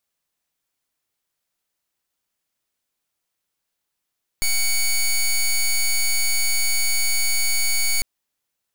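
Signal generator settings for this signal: pulse 2240 Hz, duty 11% -19 dBFS 3.60 s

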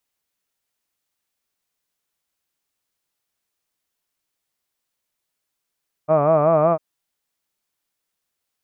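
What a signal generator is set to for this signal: formant-synthesis vowel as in hud, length 0.70 s, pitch 149 Hz, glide +1.5 st, vibrato depth 1.1 st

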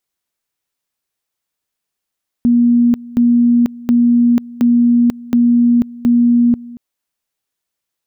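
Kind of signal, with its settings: two-level tone 239 Hz -7.5 dBFS, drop 21 dB, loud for 0.49 s, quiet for 0.23 s, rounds 6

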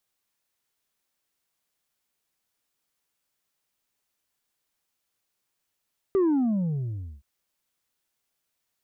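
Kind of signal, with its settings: sub drop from 400 Hz, over 1.07 s, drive 3 dB, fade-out 1.04 s, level -19 dB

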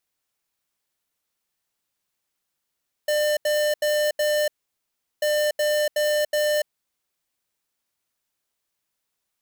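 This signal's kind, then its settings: beep pattern square 599 Hz, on 0.29 s, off 0.08 s, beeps 4, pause 0.74 s, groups 2, -21.5 dBFS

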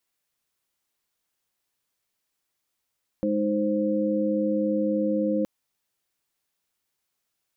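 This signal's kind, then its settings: chord G#3/D#4/C5 sine, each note -26 dBFS 2.22 s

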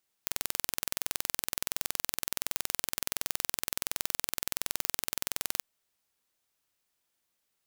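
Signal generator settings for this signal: pulse train 21.4/s, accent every 0, -2.5 dBFS 5.37 s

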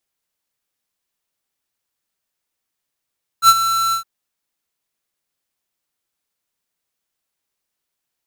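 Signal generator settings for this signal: ADSR square 1340 Hz, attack 68 ms, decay 46 ms, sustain -11.5 dB, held 0.51 s, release 0.104 s -6.5 dBFS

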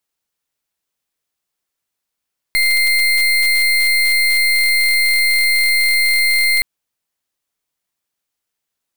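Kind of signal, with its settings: pulse 2100 Hz, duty 30% -14 dBFS 4.07 s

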